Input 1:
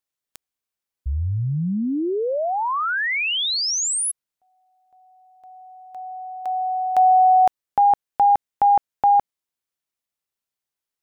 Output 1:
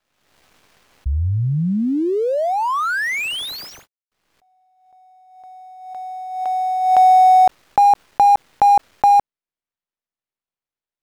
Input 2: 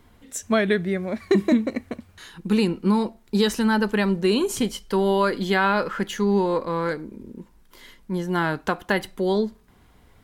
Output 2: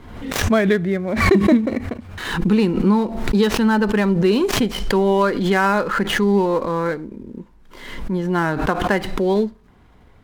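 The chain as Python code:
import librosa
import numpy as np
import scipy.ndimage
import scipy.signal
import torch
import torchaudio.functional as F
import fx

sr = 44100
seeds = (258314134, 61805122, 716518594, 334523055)

y = fx.dead_time(x, sr, dead_ms=0.066)
y = fx.lowpass(y, sr, hz=2500.0, slope=6)
y = fx.pre_swell(y, sr, db_per_s=54.0)
y = F.gain(torch.from_numpy(y), 4.0).numpy()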